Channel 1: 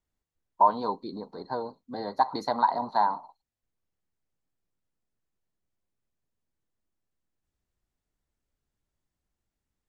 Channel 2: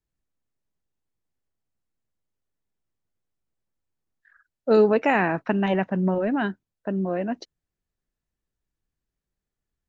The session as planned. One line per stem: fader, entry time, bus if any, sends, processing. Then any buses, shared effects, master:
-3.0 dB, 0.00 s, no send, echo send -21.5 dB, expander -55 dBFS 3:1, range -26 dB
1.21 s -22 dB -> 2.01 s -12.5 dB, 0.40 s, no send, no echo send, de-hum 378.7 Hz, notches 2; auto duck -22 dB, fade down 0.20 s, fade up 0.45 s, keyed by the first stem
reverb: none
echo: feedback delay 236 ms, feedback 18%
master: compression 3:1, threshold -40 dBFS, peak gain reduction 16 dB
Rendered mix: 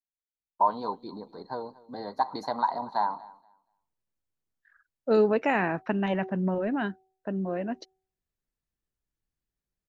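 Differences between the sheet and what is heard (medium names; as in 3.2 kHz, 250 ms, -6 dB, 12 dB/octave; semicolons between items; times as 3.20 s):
stem 2 -22.0 dB -> -14.0 dB; master: missing compression 3:1, threshold -40 dBFS, peak gain reduction 16 dB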